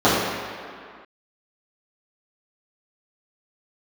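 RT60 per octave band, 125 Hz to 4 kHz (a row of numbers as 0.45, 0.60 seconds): 1.5 s, 2.0 s, 2.0 s, 2.3 s, can't be measured, 1.6 s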